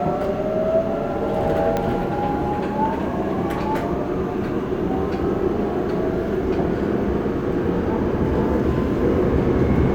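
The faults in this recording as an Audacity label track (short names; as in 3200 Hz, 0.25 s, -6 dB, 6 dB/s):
1.770000	1.770000	pop -9 dBFS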